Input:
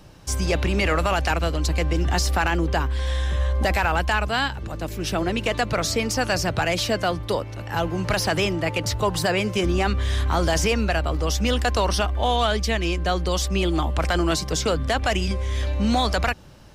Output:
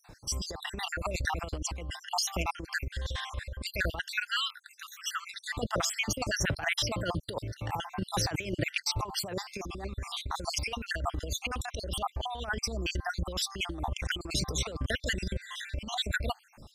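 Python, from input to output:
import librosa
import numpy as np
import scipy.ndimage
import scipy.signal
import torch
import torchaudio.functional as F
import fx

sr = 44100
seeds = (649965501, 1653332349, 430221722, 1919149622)

y = fx.spec_dropout(x, sr, seeds[0], share_pct=61)
y = fx.steep_highpass(y, sr, hz=1200.0, slope=72, at=(4.01, 5.34), fade=0.02)
y = fx.over_compress(y, sr, threshold_db=-27.0, ratio=-0.5)
y = y * 10.0 ** (-4.0 / 20.0)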